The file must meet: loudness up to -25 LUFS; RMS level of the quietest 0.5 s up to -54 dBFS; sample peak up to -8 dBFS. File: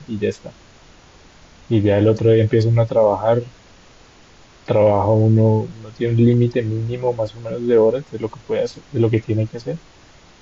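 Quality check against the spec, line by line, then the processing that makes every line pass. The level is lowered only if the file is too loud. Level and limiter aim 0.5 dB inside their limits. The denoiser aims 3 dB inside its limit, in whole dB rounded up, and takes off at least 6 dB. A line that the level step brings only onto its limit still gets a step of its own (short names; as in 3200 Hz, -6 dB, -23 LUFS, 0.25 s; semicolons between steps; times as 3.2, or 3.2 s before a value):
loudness -18.0 LUFS: fail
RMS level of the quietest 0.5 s -47 dBFS: fail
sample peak -5.0 dBFS: fail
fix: gain -7.5 dB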